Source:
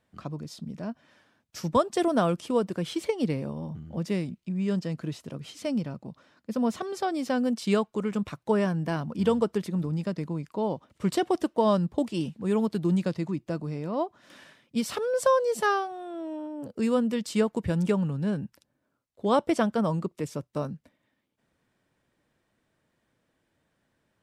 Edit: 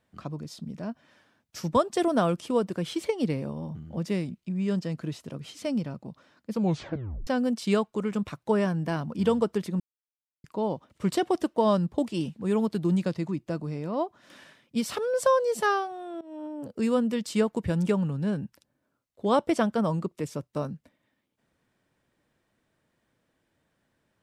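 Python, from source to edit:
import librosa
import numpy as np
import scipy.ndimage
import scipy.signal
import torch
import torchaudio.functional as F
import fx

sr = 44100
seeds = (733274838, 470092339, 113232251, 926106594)

y = fx.edit(x, sr, fx.tape_stop(start_s=6.5, length_s=0.77),
    fx.silence(start_s=9.8, length_s=0.64),
    fx.fade_in_from(start_s=16.21, length_s=0.25, floor_db=-20.0), tone=tone)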